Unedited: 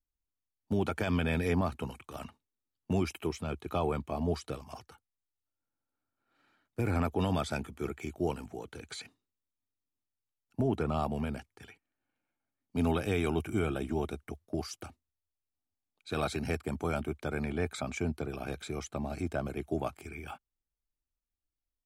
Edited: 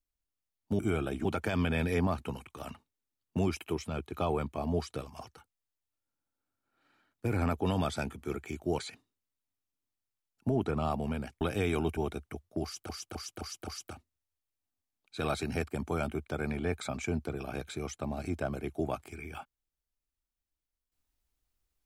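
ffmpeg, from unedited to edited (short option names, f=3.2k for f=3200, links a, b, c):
-filter_complex "[0:a]asplit=10[a][b][c][d][e][f][g][h][i][j];[a]atrim=end=0.792[k];[b]atrim=start=13.478:end=13.942[l];[c]atrim=start=0.788:end=8.332[m];[d]atrim=start=8.908:end=11.532[n];[e]atrim=start=12.918:end=13.482[o];[f]atrim=start=13.938:end=14.862[p];[g]atrim=start=14.598:end=14.862[q];[h]atrim=start=14.598:end=14.862[r];[i]atrim=start=14.598:end=14.862[s];[j]atrim=start=14.598[t];[k][l]acrossfade=d=0.004:c1=hsin:c2=hsin[u];[u][m]acrossfade=d=0.004:c1=hsin:c2=hsin[v];[v][n]acrossfade=d=0.004:c1=hsin:c2=hsin[w];[w][o]acrossfade=d=0.004:c1=hsin:c2=hsin[x];[x][p]acrossfade=d=0.004:c1=hsin:c2=hsin[y];[y][q]acrossfade=d=0.004:c1=hsin:c2=hsin[z];[z][r]acrossfade=d=0.004:c1=hsin:c2=hsin[aa];[aa][s]acrossfade=d=0.004:c1=hsin:c2=hsin[ab];[ab][t]acrossfade=d=0.004:c1=hsin:c2=hsin"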